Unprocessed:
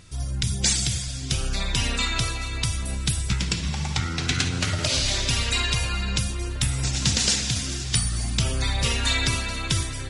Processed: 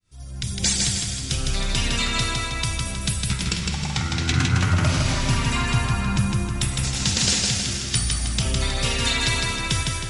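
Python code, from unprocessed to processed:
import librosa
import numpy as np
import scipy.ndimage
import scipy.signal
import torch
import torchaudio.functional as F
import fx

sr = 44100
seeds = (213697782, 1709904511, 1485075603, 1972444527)

y = fx.fade_in_head(x, sr, length_s=0.63)
y = fx.graphic_eq(y, sr, hz=(125, 250, 500, 1000, 4000, 8000), db=(7, 5, -5, 8, -8, -4), at=(4.32, 6.58))
y = fx.echo_feedback(y, sr, ms=158, feedback_pct=46, wet_db=-3.0)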